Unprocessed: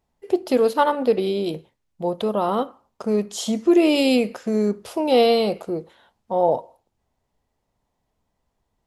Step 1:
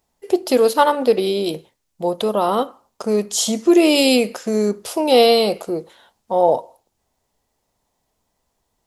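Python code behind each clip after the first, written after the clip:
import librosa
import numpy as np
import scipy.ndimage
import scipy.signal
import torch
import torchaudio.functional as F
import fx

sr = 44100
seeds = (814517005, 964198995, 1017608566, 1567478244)

y = fx.bass_treble(x, sr, bass_db=-5, treble_db=8)
y = F.gain(torch.from_numpy(y), 4.0).numpy()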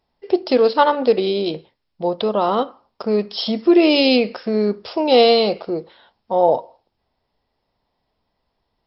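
y = fx.brickwall_lowpass(x, sr, high_hz=5500.0)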